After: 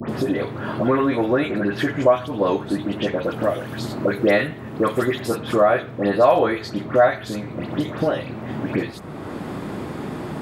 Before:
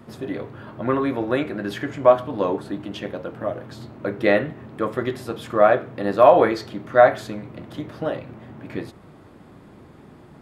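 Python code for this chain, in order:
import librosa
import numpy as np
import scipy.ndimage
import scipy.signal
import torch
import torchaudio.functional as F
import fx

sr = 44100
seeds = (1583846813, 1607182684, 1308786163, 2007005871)

y = fx.high_shelf(x, sr, hz=4000.0, db=11.5, at=(3.14, 5.27))
y = fx.dispersion(y, sr, late='highs', ms=93.0, hz=2000.0)
y = fx.band_squash(y, sr, depth_pct=70)
y = y * librosa.db_to_amplitude(3.0)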